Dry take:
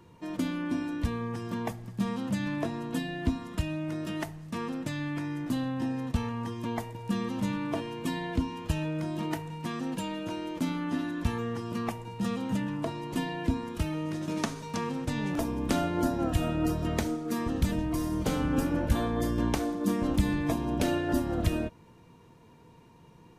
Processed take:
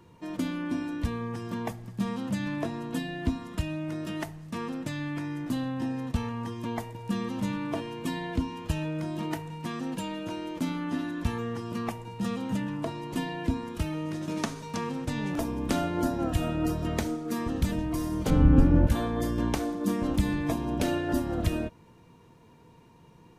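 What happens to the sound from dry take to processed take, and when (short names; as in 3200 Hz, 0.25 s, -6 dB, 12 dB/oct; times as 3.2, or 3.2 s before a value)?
18.3–18.87 RIAA curve playback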